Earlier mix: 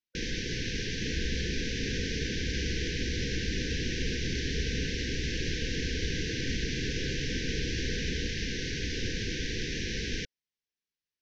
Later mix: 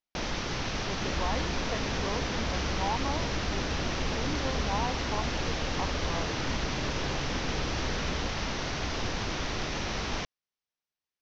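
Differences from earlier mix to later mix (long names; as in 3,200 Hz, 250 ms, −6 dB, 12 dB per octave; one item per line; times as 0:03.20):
speech: unmuted
master: remove linear-phase brick-wall band-stop 520–1,500 Hz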